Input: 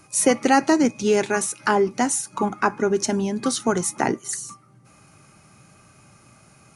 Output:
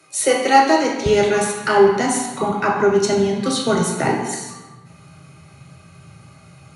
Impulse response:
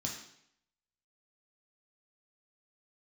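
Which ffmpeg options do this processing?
-filter_complex "[0:a]asetnsamples=nb_out_samples=441:pad=0,asendcmd='1.06 highpass f 76',highpass=380[link_01];[1:a]atrim=start_sample=2205,asetrate=26901,aresample=44100[link_02];[link_01][link_02]afir=irnorm=-1:irlink=0,volume=-1dB"

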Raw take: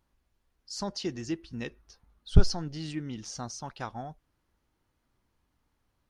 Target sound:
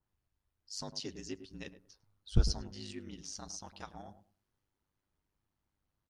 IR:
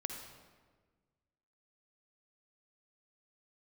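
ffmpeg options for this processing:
-filter_complex "[0:a]asplit=2[link_01][link_02];[link_02]adelay=103,lowpass=frequency=840:poles=1,volume=-10dB,asplit=2[link_03][link_04];[link_04]adelay=103,lowpass=frequency=840:poles=1,volume=0.23,asplit=2[link_05][link_06];[link_06]adelay=103,lowpass=frequency=840:poles=1,volume=0.23[link_07];[link_01][link_03][link_05][link_07]amix=inputs=4:normalize=0,aeval=exprs='val(0)*sin(2*PI*50*n/s)':channel_layout=same,adynamicequalizer=threshold=0.00158:dfrequency=2700:dqfactor=0.7:tfrequency=2700:tqfactor=0.7:attack=5:release=100:ratio=0.375:range=4:mode=boostabove:tftype=highshelf,volume=-7.5dB"

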